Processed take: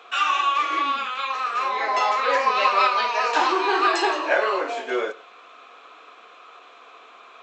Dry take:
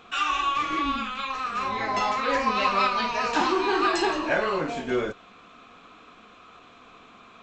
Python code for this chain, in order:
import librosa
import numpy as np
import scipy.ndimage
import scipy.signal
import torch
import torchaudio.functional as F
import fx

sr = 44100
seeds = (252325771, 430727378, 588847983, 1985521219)

p1 = scipy.signal.sosfilt(scipy.signal.butter(4, 410.0, 'highpass', fs=sr, output='sos'), x)
p2 = fx.high_shelf(p1, sr, hz=5200.0, db=-5.0)
p3 = p2 + fx.echo_single(p2, sr, ms=104, db=-20.5, dry=0)
y = p3 * 10.0 ** (4.5 / 20.0)